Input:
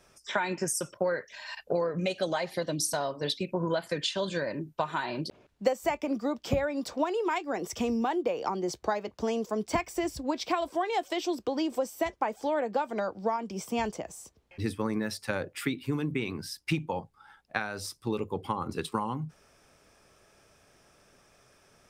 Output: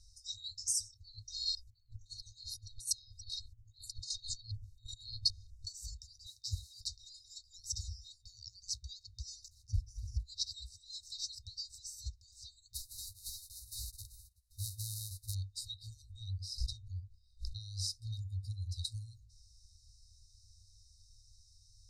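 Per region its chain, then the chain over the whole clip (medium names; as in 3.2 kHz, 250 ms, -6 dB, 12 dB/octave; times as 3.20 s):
1.18–5.67 s: compressor with a negative ratio -36 dBFS, ratio -0.5 + comb 1.4 ms, depth 93% + step-sequenced notch 8.1 Hz 900–5300 Hz
6.26–6.81 s: modulation noise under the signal 26 dB + high-pass 250 Hz 6 dB/octave
9.48–10.23 s: boxcar filter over 11 samples + peaking EQ 150 Hz +12.5 dB 0.85 oct + companded quantiser 8-bit
12.73–15.33 s: formants flattened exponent 0.1 + high-order bell 3.1 kHz -14 dB 3 oct
16.14–17.60 s: treble shelf 3.1 kHz -8 dB + swell ahead of each attack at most 150 dB/s
whole clip: FFT band-reject 110–3700 Hz; low-pass 6.8 kHz 12 dB/octave; bass shelf 62 Hz +11 dB; trim +3.5 dB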